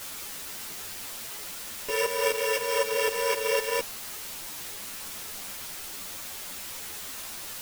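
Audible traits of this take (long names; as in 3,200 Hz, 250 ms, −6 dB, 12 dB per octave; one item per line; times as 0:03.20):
a buzz of ramps at a fixed pitch in blocks of 16 samples
tremolo saw up 3.9 Hz, depth 80%
a quantiser's noise floor 8 bits, dither triangular
a shimmering, thickened sound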